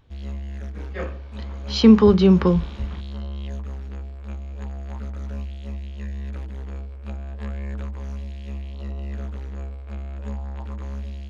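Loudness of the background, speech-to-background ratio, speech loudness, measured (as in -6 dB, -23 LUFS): -33.5 LUFS, 17.5 dB, -16.0 LUFS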